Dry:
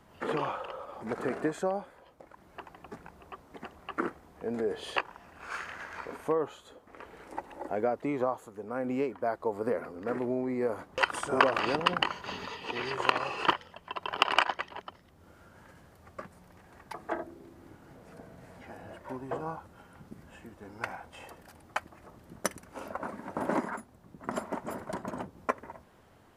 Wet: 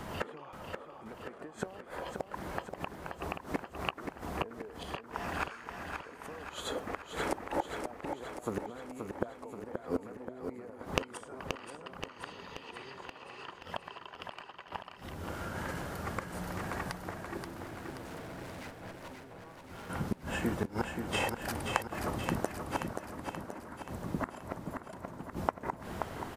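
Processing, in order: compressor 8:1, threshold -37 dBFS, peak gain reduction 20.5 dB; flipped gate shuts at -36 dBFS, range -24 dB; 17.37–19.9 tube stage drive 61 dB, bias 0.75; feedback echo 0.529 s, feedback 56%, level -6 dB; gain +16.5 dB

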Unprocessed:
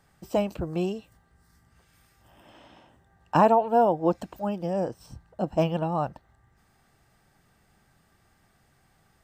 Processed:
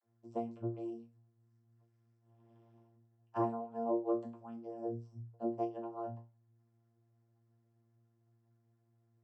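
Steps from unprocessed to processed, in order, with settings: harmonic-percussive split harmonic -12 dB; vocoder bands 32, saw 115 Hz; resonator bank A#2 fifth, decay 0.3 s; gain +1 dB

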